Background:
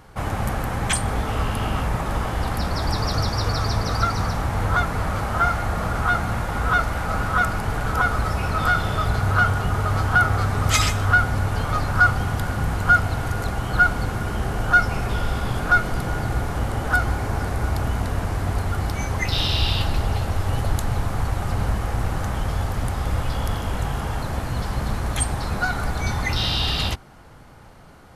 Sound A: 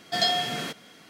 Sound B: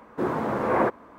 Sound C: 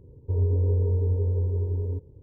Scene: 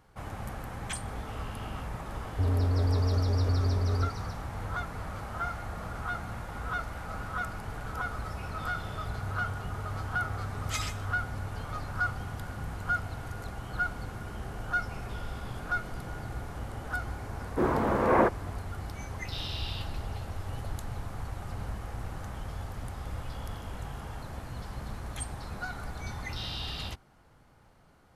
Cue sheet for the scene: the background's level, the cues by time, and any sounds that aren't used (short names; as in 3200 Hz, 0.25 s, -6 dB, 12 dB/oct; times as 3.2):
background -14 dB
2.1 add C -8 dB + sample leveller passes 3
17.39 add B -0.5 dB
not used: A